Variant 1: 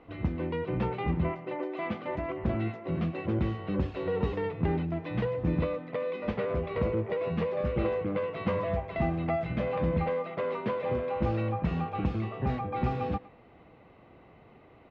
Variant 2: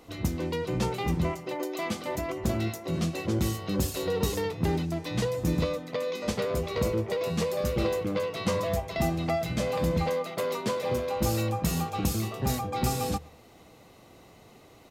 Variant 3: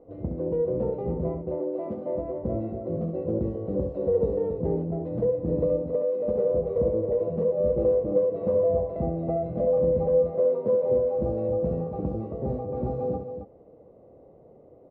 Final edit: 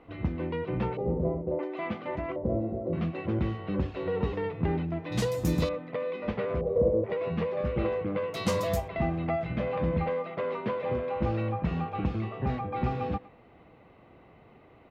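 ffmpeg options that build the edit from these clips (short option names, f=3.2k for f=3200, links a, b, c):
-filter_complex "[2:a]asplit=3[a][b][c];[1:a]asplit=2[d][e];[0:a]asplit=6[f][g][h][i][j][k];[f]atrim=end=0.972[l];[a]atrim=start=0.968:end=1.592[m];[g]atrim=start=1.588:end=2.362[n];[b]atrim=start=2.358:end=2.932[o];[h]atrim=start=2.928:end=5.122[p];[d]atrim=start=5.118:end=5.692[q];[i]atrim=start=5.688:end=6.612[r];[c]atrim=start=6.608:end=7.042[s];[j]atrim=start=7.038:end=8.342[t];[e]atrim=start=8.338:end=8.882[u];[k]atrim=start=8.878[v];[l][m]acrossfade=d=0.004:c1=hsin:c2=hsin[w];[w][n]acrossfade=d=0.004:c1=hsin:c2=hsin[x];[x][o]acrossfade=d=0.004:c1=hsin:c2=hsin[y];[y][p]acrossfade=d=0.004:c1=hsin:c2=hsin[z];[z][q]acrossfade=d=0.004:c1=hsin:c2=hsin[aa];[aa][r]acrossfade=d=0.004:c1=hsin:c2=hsin[ab];[ab][s]acrossfade=d=0.004:c1=hsin:c2=hsin[ac];[ac][t]acrossfade=d=0.004:c1=hsin:c2=hsin[ad];[ad][u]acrossfade=d=0.004:c1=hsin:c2=hsin[ae];[ae][v]acrossfade=d=0.004:c1=hsin:c2=hsin"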